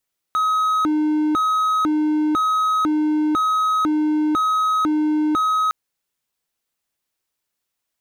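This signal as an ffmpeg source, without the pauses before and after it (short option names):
-f lavfi -i "aevalsrc='0.2*(1-4*abs(mod((787.5*t+482.5/1*(0.5-abs(mod(1*t,1)-0.5)))+0.25,1)-0.5))':d=5.36:s=44100"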